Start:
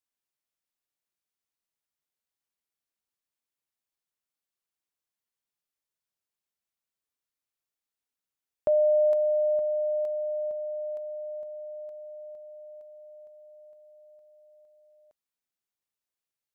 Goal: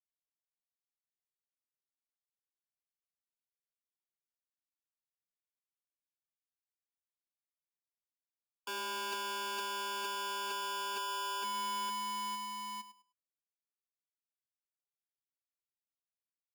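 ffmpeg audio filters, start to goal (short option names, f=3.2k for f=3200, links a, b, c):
-filter_complex "[0:a]afftfilt=real='re*gte(hypot(re,im),0.0631)':imag='im*gte(hypot(re,im),0.0631)':win_size=1024:overlap=0.75,lowshelf=f=270:g=-5,bandreject=f=60:t=h:w=6,bandreject=f=120:t=h:w=6,bandreject=f=180:t=h:w=6,bandreject=f=240:t=h:w=6,bandreject=f=300:t=h:w=6,areverse,acompressor=threshold=-38dB:ratio=16,areverse,aeval=exprs='0.0178*(cos(1*acos(clip(val(0)/0.0178,-1,1)))-cos(1*PI/2))+0.00631*(cos(3*acos(clip(val(0)/0.0178,-1,1)))-cos(3*PI/2))+0.00794*(cos(6*acos(clip(val(0)/0.0178,-1,1)))-cos(6*PI/2))+0.000224*(cos(8*acos(clip(val(0)/0.0178,-1,1)))-cos(8*PI/2))':c=same,asuperstop=centerf=870:order=20:qfactor=1.4,asplit=2[a][b];[b]adelay=103,lowpass=f=860:p=1,volume=-11.5dB,asplit=2[c][d];[d]adelay=103,lowpass=f=860:p=1,volume=0.24,asplit=2[e][f];[f]adelay=103,lowpass=f=860:p=1,volume=0.24[g];[a][c][e][g]amix=inputs=4:normalize=0,aeval=exprs='val(0)*sgn(sin(2*PI*1000*n/s))':c=same"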